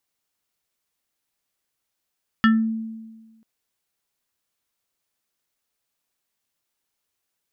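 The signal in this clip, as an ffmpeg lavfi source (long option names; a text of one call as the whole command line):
ffmpeg -f lavfi -i "aevalsrc='0.282*pow(10,-3*t/1.37)*sin(2*PI*223*t+1.3*pow(10,-3*t/0.28)*sin(2*PI*6.97*223*t))':duration=0.99:sample_rate=44100" out.wav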